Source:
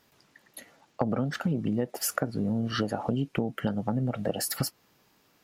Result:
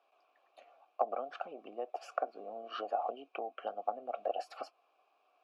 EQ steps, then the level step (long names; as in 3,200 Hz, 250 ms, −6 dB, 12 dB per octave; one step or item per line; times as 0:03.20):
formant filter a
high-pass filter 330 Hz 24 dB per octave
high-frequency loss of the air 72 metres
+6.0 dB